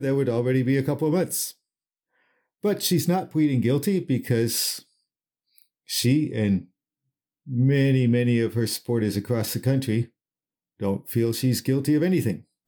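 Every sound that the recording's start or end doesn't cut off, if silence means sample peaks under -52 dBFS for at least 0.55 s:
2.63–4.83
5.58–6.67
7.46–10.09

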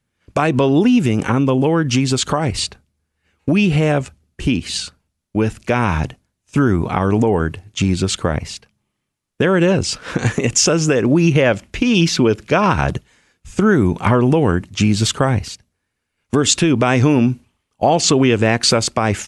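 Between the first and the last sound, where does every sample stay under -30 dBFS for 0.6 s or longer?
2.73–3.48
8.57–9.4
15.55–16.33

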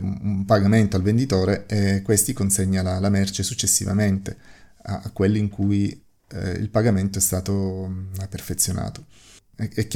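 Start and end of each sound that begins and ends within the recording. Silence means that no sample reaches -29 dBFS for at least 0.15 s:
4.85–5.93
6.31–8.98

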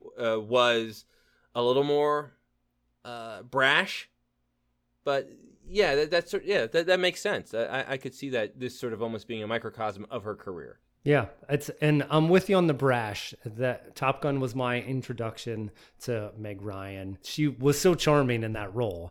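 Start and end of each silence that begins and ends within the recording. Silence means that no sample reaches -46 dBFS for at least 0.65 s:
2.28–3.05
4.04–5.06

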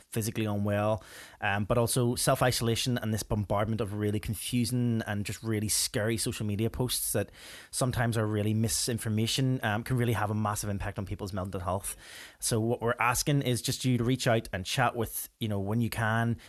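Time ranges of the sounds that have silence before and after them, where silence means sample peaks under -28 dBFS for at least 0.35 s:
1.43–7.22
7.75–11.92

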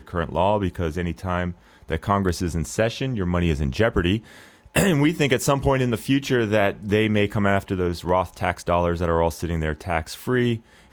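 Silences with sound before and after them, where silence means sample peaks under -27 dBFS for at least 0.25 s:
1.51–1.9
4.18–4.76

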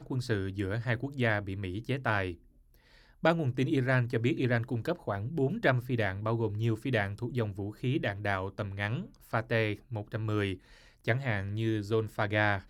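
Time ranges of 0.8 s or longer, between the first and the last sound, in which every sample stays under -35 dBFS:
2.33–3.24

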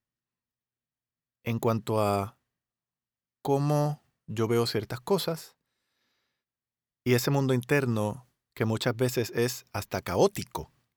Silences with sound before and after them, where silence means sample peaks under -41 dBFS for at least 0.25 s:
2.29–3.45
3.95–4.29
5.46–7.06
8.19–8.57

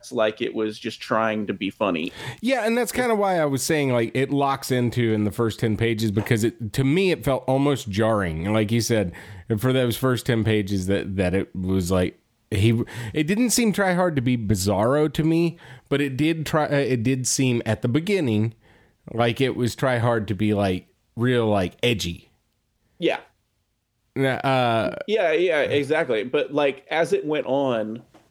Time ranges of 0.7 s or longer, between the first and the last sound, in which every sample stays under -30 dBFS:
22.16–23.01
23.18–24.16

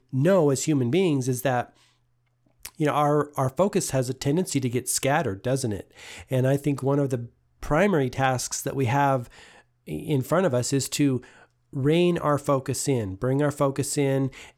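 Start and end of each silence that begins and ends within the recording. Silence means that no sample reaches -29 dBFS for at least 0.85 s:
1.62–2.65

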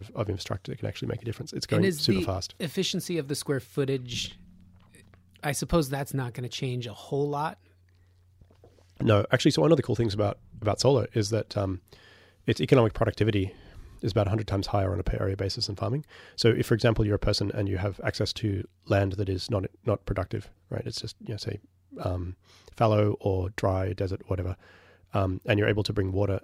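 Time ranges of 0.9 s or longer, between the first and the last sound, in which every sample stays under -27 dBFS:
4.26–5.44
7.49–9.01

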